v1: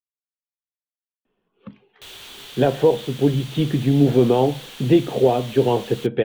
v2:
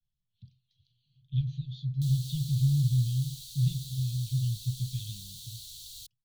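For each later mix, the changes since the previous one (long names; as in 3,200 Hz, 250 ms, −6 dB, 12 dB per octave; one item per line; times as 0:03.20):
speech: entry −1.25 s
master: add Chebyshev band-stop filter 130–4,100 Hz, order 4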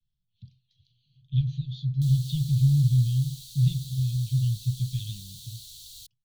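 speech +4.5 dB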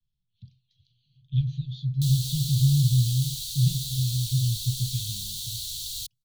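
background +11.5 dB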